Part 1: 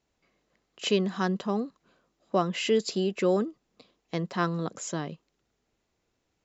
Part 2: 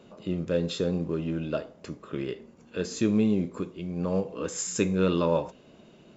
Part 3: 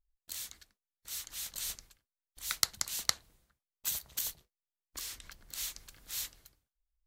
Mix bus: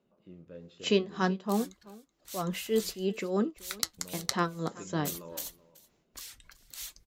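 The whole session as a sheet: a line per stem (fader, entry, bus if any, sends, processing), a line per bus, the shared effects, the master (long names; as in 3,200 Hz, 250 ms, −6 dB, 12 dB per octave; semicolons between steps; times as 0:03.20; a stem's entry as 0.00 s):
−6.5 dB, 0.00 s, no send, echo send −22 dB, automatic gain control gain up to 16.5 dB; amplitude tremolo 3.2 Hz, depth 82%
−16.5 dB, 0.00 s, muted 0:01.32–0:03.98, no send, echo send −19 dB, low-pass filter 2,400 Hz 6 dB per octave
+2.0 dB, 1.20 s, no send, echo send −20.5 dB, reverb reduction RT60 0.82 s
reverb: not used
echo: single-tap delay 378 ms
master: flanger 0.55 Hz, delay 4.9 ms, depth 3.6 ms, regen −72%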